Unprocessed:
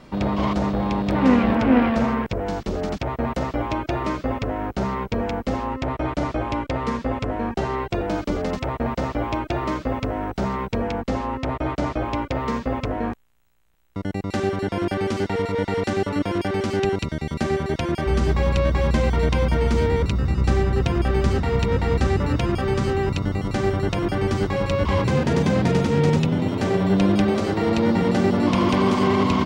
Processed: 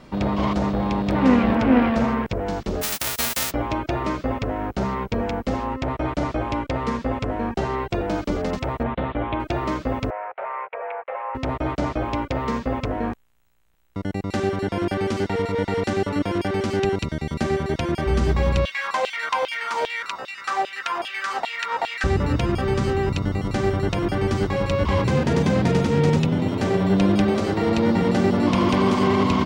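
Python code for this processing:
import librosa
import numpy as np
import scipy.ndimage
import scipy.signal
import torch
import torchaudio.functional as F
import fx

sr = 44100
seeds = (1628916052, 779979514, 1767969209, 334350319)

y = fx.envelope_flatten(x, sr, power=0.1, at=(2.81, 3.5), fade=0.02)
y = fx.ellip_lowpass(y, sr, hz=3600.0, order=4, stop_db=40, at=(8.83, 9.4))
y = fx.ellip_bandpass(y, sr, low_hz=540.0, high_hz=2400.0, order=3, stop_db=40, at=(10.1, 11.35))
y = fx.filter_lfo_highpass(y, sr, shape='saw_down', hz=2.5, low_hz=630.0, high_hz=3300.0, q=3.8, at=(18.65, 22.04))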